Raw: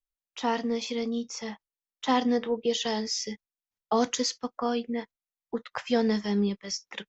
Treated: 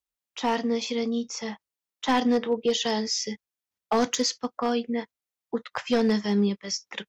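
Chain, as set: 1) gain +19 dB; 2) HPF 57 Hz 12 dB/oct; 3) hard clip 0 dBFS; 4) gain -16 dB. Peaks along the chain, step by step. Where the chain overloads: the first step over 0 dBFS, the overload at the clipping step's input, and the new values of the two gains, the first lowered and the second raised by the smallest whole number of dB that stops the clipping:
+7.0, +7.0, 0.0, -16.0 dBFS; step 1, 7.0 dB; step 1 +12 dB, step 4 -9 dB

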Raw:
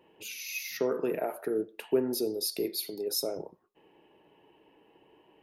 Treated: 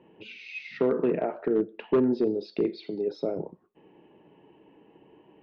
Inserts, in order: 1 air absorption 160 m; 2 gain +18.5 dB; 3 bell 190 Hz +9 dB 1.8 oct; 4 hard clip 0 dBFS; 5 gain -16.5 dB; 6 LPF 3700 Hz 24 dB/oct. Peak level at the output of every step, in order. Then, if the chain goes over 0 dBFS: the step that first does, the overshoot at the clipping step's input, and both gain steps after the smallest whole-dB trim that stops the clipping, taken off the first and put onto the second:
-15.0, +3.5, +8.0, 0.0, -16.5, -16.0 dBFS; step 2, 8.0 dB; step 2 +10.5 dB, step 5 -8.5 dB

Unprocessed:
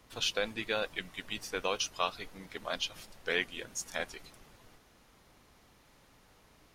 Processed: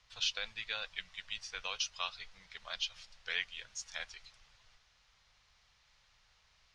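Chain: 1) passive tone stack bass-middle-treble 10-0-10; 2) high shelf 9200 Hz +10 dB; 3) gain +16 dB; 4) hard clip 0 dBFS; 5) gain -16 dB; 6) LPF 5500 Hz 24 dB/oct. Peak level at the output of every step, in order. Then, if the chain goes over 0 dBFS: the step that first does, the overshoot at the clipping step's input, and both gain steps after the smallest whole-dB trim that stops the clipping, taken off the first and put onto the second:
-19.5, -19.0, -3.0, -3.0, -19.0, -19.0 dBFS; no overload

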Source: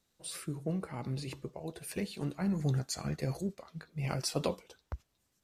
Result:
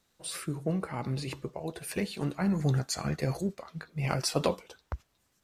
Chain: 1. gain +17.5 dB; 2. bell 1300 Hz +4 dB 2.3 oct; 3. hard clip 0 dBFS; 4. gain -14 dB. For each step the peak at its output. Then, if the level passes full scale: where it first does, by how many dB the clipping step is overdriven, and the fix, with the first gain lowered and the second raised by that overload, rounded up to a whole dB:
+1.0, +3.5, 0.0, -14.0 dBFS; step 1, 3.5 dB; step 1 +13.5 dB, step 4 -10 dB

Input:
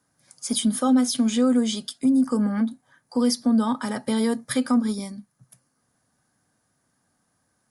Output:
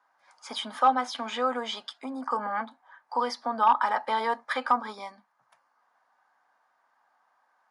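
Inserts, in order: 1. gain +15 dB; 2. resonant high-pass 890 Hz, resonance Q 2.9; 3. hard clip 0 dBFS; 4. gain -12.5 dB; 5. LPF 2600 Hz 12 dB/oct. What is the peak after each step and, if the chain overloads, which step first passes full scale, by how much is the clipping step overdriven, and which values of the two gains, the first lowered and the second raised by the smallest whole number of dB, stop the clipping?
+4.0, +4.0, 0.0, -12.5, -12.0 dBFS; step 1, 4.0 dB; step 1 +11 dB, step 4 -8.5 dB

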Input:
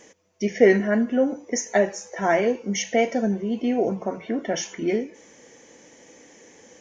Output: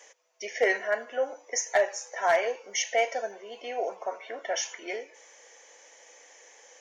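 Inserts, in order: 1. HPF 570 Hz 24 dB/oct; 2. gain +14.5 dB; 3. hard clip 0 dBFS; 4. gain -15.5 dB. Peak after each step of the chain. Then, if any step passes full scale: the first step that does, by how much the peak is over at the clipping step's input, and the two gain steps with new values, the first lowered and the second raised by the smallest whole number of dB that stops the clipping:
-10.0, +4.5, 0.0, -15.5 dBFS; step 2, 4.5 dB; step 2 +9.5 dB, step 4 -10.5 dB

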